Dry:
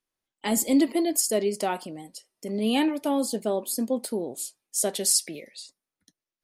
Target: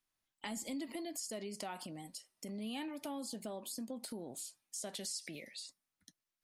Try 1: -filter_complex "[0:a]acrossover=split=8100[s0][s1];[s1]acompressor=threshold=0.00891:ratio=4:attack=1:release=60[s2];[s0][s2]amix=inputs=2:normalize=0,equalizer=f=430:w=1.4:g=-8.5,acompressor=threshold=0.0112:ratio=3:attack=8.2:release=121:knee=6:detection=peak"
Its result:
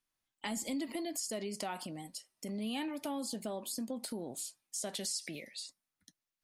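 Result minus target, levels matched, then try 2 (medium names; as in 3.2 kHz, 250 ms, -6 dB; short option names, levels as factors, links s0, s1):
compression: peak gain reduction -4.5 dB
-filter_complex "[0:a]acrossover=split=8100[s0][s1];[s1]acompressor=threshold=0.00891:ratio=4:attack=1:release=60[s2];[s0][s2]amix=inputs=2:normalize=0,equalizer=f=430:w=1.4:g=-8.5,acompressor=threshold=0.00531:ratio=3:attack=8.2:release=121:knee=6:detection=peak"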